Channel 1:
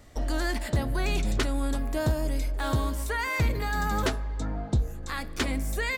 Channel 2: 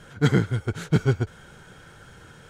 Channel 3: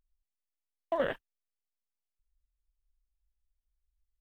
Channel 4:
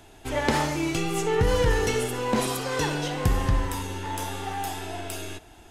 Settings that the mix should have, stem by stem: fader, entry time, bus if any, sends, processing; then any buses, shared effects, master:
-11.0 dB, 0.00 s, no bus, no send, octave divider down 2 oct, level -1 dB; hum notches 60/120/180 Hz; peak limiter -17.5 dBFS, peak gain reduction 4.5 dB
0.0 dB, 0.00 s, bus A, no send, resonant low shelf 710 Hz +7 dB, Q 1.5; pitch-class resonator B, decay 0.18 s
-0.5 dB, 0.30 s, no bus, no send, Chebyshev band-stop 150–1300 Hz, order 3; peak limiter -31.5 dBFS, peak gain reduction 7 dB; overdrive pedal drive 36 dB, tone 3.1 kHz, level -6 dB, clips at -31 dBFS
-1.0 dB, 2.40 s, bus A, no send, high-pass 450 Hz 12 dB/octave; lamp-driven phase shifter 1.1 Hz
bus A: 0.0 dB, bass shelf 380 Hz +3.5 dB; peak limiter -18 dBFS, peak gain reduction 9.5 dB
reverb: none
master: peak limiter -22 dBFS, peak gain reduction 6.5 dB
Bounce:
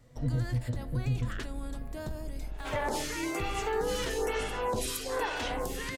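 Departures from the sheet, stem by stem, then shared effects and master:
stem 2 0.0 dB -> -10.0 dB; stem 3: missing overdrive pedal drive 36 dB, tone 3.1 kHz, level -6 dB, clips at -31 dBFS

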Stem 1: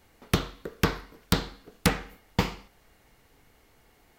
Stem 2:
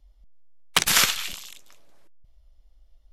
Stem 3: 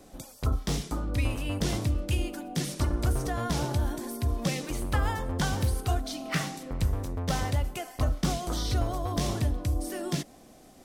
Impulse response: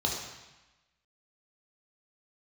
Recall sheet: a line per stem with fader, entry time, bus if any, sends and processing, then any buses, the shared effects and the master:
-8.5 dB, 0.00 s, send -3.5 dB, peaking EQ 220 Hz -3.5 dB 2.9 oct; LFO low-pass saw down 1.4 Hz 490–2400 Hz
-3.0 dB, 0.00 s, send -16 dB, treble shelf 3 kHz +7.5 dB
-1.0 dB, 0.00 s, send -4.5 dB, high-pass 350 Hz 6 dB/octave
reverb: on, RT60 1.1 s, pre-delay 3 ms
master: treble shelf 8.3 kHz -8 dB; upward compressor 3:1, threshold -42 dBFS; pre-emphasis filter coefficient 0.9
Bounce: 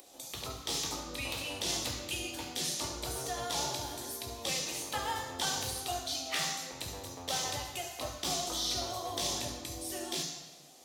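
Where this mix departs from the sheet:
stem 1: missing LFO low-pass saw down 1.4 Hz 490–2400 Hz; stem 2: muted; stem 3 -1.0 dB -> +6.0 dB

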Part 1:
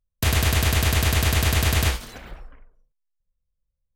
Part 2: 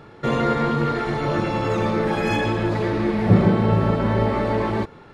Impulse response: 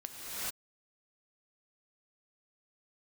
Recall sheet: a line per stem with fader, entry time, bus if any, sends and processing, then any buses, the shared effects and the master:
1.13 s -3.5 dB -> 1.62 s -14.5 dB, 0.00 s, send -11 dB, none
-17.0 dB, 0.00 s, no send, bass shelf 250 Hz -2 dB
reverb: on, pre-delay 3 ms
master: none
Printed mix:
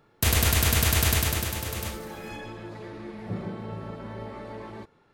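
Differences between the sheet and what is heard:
stem 1: send -11 dB -> -19.5 dB; master: extra treble shelf 6.4 kHz +8 dB

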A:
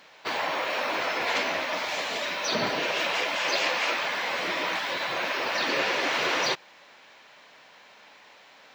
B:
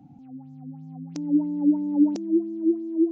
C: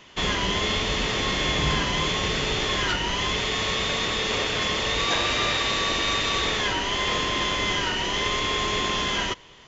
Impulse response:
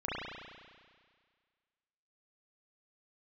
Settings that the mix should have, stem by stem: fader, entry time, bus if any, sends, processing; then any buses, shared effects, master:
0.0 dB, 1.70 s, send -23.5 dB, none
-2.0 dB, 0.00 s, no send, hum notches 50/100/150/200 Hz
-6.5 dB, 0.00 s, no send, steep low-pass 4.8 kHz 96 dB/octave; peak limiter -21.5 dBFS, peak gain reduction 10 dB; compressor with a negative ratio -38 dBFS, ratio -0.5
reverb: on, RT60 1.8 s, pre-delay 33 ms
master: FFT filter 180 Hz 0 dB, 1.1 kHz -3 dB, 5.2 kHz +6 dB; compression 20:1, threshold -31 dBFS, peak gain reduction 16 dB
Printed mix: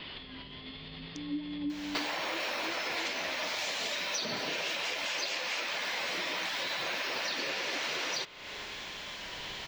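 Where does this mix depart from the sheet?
stem A 0.0 dB -> +7.5 dB; stem B -2.0 dB -> -10.0 dB

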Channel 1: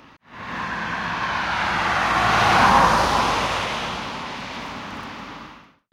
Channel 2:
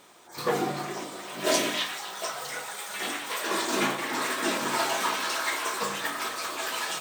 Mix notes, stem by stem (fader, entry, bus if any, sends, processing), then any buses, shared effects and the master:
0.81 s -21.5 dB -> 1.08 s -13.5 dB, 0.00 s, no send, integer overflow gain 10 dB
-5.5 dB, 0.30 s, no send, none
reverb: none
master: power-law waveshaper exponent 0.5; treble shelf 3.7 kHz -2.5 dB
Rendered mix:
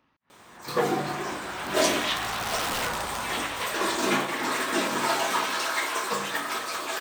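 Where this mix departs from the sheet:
stem 2 -5.5 dB -> +2.0 dB; master: missing power-law waveshaper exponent 0.5

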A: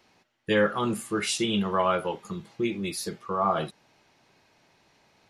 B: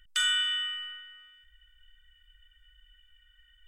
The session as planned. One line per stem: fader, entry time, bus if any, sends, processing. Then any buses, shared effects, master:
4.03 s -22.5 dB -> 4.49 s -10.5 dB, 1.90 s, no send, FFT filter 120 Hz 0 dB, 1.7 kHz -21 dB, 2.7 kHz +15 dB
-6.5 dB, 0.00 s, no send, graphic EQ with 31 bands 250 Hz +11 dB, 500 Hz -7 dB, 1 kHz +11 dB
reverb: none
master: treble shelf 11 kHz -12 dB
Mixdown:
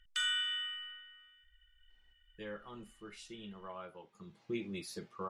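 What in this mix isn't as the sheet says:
stem A: missing FFT filter 120 Hz 0 dB, 1.7 kHz -21 dB, 2.7 kHz +15 dB; stem B: missing graphic EQ with 31 bands 250 Hz +11 dB, 500 Hz -7 dB, 1 kHz +11 dB

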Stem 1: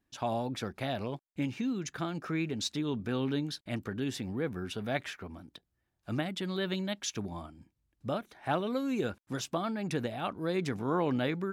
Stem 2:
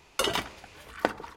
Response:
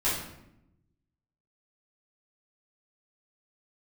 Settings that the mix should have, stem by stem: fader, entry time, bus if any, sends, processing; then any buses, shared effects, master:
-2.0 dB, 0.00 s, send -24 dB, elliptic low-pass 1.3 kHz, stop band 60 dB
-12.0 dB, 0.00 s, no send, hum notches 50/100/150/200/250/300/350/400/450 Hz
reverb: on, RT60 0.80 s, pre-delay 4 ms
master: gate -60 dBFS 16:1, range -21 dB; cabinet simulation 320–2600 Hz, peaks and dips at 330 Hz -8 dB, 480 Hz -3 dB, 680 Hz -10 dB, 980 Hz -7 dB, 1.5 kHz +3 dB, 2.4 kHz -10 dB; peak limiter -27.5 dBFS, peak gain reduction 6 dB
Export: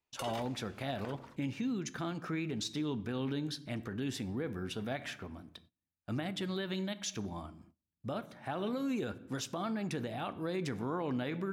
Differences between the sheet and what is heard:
stem 1: missing elliptic low-pass 1.3 kHz, stop band 60 dB; master: missing cabinet simulation 320–2600 Hz, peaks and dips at 330 Hz -8 dB, 480 Hz -3 dB, 680 Hz -10 dB, 980 Hz -7 dB, 1.5 kHz +3 dB, 2.4 kHz -10 dB

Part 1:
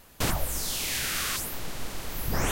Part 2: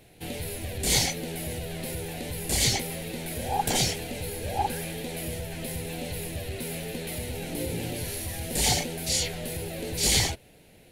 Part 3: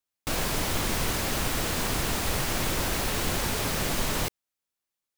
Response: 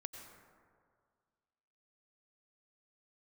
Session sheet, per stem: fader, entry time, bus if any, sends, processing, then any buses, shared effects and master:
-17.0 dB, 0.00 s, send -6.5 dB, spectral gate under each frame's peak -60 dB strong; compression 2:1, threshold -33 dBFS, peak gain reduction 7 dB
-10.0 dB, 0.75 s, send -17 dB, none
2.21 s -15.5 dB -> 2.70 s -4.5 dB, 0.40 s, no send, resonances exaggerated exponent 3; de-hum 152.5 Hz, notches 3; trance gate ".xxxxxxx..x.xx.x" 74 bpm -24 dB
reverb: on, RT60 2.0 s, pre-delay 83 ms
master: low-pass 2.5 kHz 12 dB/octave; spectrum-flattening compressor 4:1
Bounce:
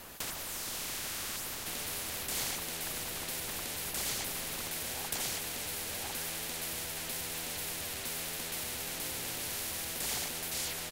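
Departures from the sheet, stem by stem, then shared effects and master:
stem 2: entry 0.75 s -> 1.45 s; stem 3 -15.5 dB -> -23.0 dB; master: missing low-pass 2.5 kHz 12 dB/octave

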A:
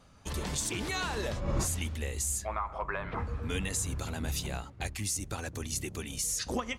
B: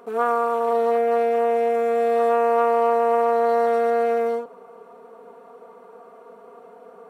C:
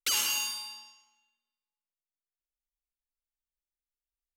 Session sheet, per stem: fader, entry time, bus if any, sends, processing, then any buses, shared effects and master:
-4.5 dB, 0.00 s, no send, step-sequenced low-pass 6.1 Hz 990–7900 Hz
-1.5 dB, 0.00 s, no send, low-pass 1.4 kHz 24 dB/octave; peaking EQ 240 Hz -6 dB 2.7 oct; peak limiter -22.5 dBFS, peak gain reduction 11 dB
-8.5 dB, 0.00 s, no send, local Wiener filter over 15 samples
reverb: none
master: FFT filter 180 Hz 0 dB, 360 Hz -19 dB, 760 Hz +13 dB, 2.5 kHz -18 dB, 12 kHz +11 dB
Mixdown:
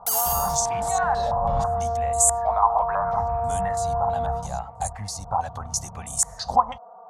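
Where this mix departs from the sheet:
stem A -4.5 dB -> +3.5 dB; stem C -8.5 dB -> +1.5 dB

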